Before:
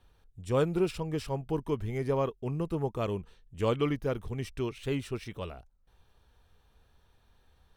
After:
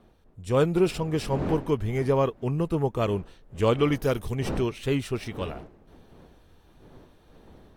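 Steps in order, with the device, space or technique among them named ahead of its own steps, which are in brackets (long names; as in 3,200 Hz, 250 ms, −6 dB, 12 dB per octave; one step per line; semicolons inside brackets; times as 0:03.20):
0:03.92–0:04.35: high-shelf EQ 3,800 Hz +12 dB
smartphone video outdoors (wind on the microphone 410 Hz −47 dBFS; automatic gain control gain up to 6 dB; AAC 64 kbit/s 44,100 Hz)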